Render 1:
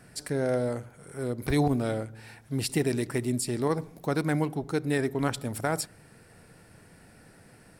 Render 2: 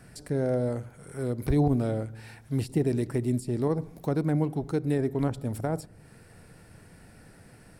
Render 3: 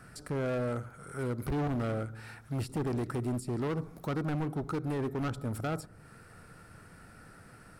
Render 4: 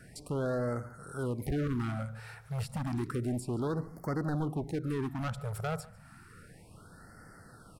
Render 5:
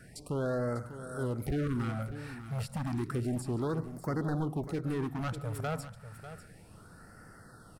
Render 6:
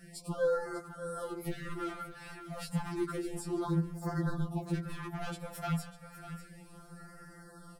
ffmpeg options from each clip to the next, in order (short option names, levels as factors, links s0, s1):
-filter_complex "[0:a]lowshelf=f=120:g=7,acrossover=split=820[s0][s1];[s1]acompressor=threshold=0.00631:ratio=6[s2];[s0][s2]amix=inputs=2:normalize=0"
-af "equalizer=f=1300:w=3.3:g=13,asoftclip=type=hard:threshold=0.0473,volume=0.75"
-filter_complex "[0:a]asplit=2[s0][s1];[s1]adelay=145.8,volume=0.0891,highshelf=f=4000:g=-3.28[s2];[s0][s2]amix=inputs=2:normalize=0,afftfilt=real='re*(1-between(b*sr/1024,270*pow(3100/270,0.5+0.5*sin(2*PI*0.31*pts/sr))/1.41,270*pow(3100/270,0.5+0.5*sin(2*PI*0.31*pts/sr))*1.41))':imag='im*(1-between(b*sr/1024,270*pow(3100/270,0.5+0.5*sin(2*PI*0.31*pts/sr))/1.41,270*pow(3100/270,0.5+0.5*sin(2*PI*0.31*pts/sr))*1.41))':win_size=1024:overlap=0.75"
-af "aecho=1:1:596:0.237"
-af "afftfilt=real='re*2.83*eq(mod(b,8),0)':imag='im*2.83*eq(mod(b,8),0)':win_size=2048:overlap=0.75,volume=1.5"